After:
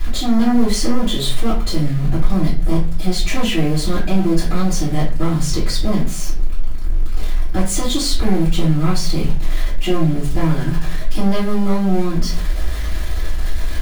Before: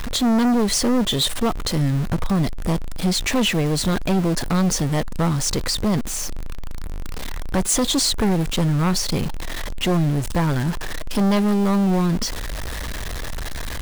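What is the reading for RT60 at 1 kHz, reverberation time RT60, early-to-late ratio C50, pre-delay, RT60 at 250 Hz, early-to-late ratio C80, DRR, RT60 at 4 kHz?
0.35 s, 0.40 s, 6.0 dB, 3 ms, 0.60 s, 11.5 dB, −11.5 dB, 0.30 s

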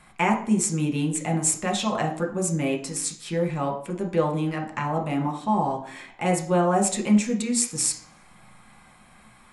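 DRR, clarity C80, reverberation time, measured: 1.0 dB, 13.5 dB, 0.60 s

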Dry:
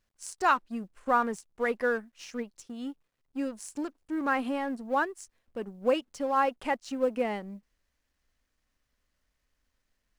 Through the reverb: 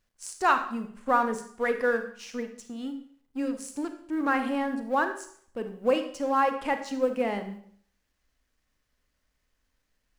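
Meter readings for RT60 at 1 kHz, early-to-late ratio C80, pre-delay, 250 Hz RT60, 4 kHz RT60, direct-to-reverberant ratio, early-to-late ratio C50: 0.60 s, 13.0 dB, 32 ms, 0.50 s, 0.55 s, 7.5 dB, 10.0 dB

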